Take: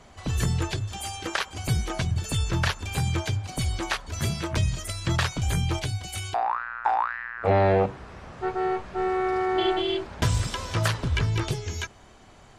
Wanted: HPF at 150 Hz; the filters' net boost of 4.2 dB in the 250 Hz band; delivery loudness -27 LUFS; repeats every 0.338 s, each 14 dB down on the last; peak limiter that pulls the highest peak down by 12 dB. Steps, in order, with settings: HPF 150 Hz; bell 250 Hz +8.5 dB; limiter -21 dBFS; feedback echo 0.338 s, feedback 20%, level -14 dB; gain +4 dB

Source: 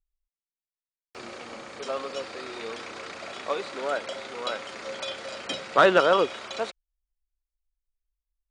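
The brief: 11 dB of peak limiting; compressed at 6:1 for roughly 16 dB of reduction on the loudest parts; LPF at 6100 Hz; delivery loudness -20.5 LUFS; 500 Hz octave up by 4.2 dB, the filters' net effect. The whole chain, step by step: LPF 6100 Hz; bell 500 Hz +5 dB; compressor 6:1, threshold -28 dBFS; gain +16.5 dB; limiter -11 dBFS

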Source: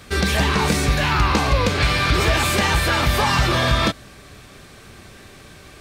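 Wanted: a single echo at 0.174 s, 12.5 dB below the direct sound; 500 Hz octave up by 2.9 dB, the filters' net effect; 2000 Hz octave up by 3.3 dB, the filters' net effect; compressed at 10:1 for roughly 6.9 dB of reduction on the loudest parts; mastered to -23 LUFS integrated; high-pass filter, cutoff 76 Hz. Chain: HPF 76 Hz; bell 500 Hz +3.5 dB; bell 2000 Hz +4 dB; compressor 10:1, threshold -20 dBFS; echo 0.174 s -12.5 dB

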